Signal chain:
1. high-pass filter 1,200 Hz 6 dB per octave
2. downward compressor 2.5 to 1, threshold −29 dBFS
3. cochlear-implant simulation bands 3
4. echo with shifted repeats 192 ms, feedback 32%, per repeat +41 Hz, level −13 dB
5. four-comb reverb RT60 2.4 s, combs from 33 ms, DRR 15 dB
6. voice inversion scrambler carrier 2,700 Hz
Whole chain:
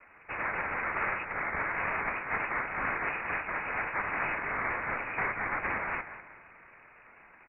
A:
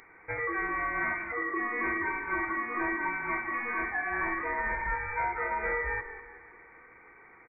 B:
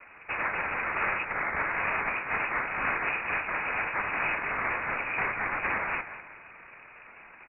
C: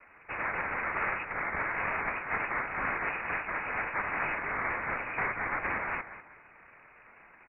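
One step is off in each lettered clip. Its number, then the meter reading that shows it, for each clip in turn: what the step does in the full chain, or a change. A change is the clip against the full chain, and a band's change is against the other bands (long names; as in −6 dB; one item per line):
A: 3, 250 Hz band +5.0 dB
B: 1, 2 kHz band +2.0 dB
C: 5, change in momentary loudness spread −1 LU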